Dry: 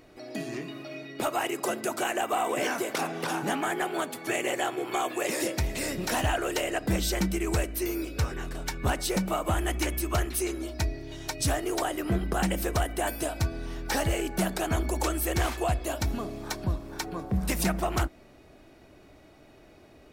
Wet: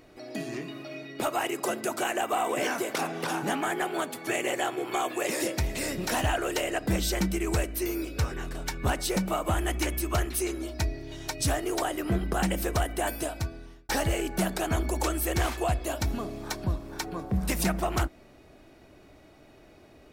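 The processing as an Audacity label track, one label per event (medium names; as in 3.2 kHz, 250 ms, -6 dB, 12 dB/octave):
13.160000	13.890000	fade out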